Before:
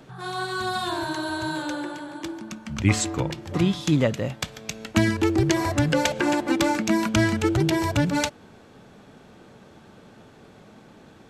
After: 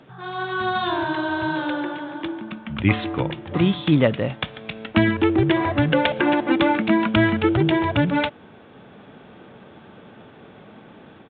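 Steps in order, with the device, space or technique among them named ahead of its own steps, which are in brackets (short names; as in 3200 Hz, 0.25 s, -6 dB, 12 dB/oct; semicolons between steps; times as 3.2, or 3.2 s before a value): Bluetooth headset (HPF 110 Hz 6 dB/oct; AGC gain up to 5 dB; downsampling 8000 Hz; SBC 64 kbps 16000 Hz)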